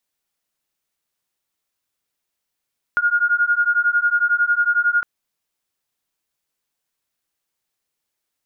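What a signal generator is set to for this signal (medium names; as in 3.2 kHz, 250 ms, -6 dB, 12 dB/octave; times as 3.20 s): beating tones 1.42 kHz, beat 11 Hz, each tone -18 dBFS 2.06 s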